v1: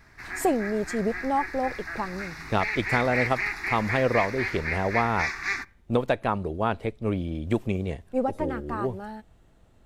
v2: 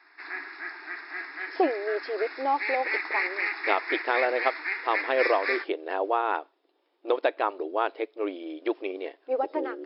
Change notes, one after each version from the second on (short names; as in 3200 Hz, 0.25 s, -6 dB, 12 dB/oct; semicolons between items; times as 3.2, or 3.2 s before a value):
speech: entry +1.15 s; master: add brick-wall FIR band-pass 280–5400 Hz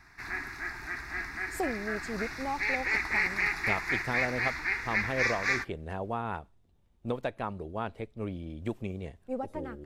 speech -9.0 dB; master: remove brick-wall FIR band-pass 280–5400 Hz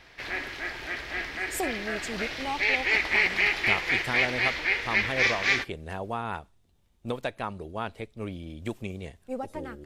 speech: add high shelf 2100 Hz +10 dB; background: remove fixed phaser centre 1300 Hz, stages 4